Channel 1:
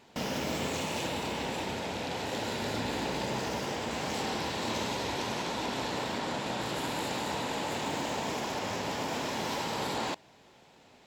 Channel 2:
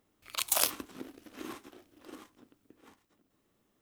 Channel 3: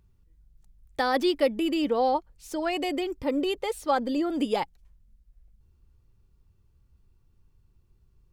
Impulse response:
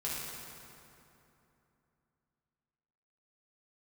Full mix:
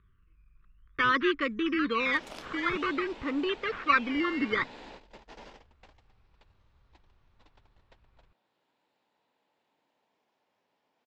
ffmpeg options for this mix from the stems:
-filter_complex "[0:a]highpass=frequency=350:poles=1,adelay=1850,volume=-12dB[link_01];[1:a]adelay=1750,volume=-14.5dB[link_02];[2:a]acrusher=samples=12:mix=1:aa=0.000001:lfo=1:lforange=12:lforate=0.52,firequalizer=gain_entry='entry(420,0);entry(760,-27);entry(1100,13);entry(8700,-25)':delay=0.05:min_phase=1,volume=-3dB,asplit=2[link_03][link_04];[link_04]apad=whole_len=569352[link_05];[link_01][link_05]sidechaingate=range=-30dB:threshold=-58dB:ratio=16:detection=peak[link_06];[link_06][link_02][link_03]amix=inputs=3:normalize=0,lowpass=4300"

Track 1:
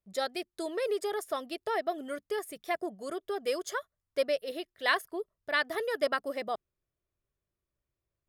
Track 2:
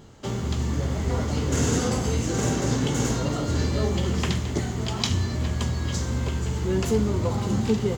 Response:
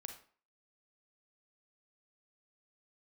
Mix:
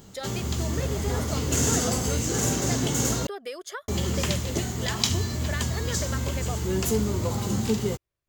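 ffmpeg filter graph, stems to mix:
-filter_complex "[0:a]equalizer=frequency=2400:width=0.45:gain=4.5,acompressor=threshold=-32dB:ratio=6,volume=-0.5dB[link_01];[1:a]aemphasis=mode=production:type=50fm,volume=-2dB,asplit=3[link_02][link_03][link_04];[link_02]atrim=end=3.27,asetpts=PTS-STARTPTS,afade=type=out:start_time=3.266:duration=0.004:curve=hsin[link_05];[link_03]atrim=start=3.27:end=3.88,asetpts=PTS-STARTPTS,volume=0[link_06];[link_04]atrim=start=3.88,asetpts=PTS-STARTPTS,afade=type=in:duration=0.004:curve=hsin[link_07];[link_05][link_06][link_07]concat=n=3:v=0:a=1[link_08];[link_01][link_08]amix=inputs=2:normalize=0"

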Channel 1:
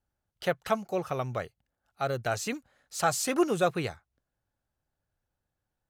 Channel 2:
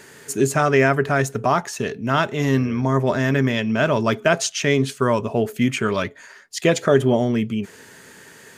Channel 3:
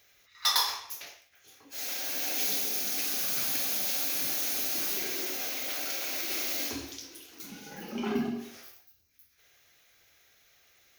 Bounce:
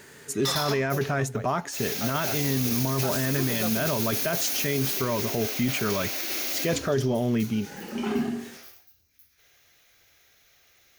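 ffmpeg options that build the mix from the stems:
ffmpeg -i stem1.wav -i stem2.wav -i stem3.wav -filter_complex "[0:a]volume=-7dB[link_01];[1:a]volume=-4.5dB[link_02];[2:a]volume=2.5dB[link_03];[link_01][link_02][link_03]amix=inputs=3:normalize=0,lowshelf=frequency=170:gain=3.5,alimiter=limit=-16dB:level=0:latency=1:release=11" out.wav

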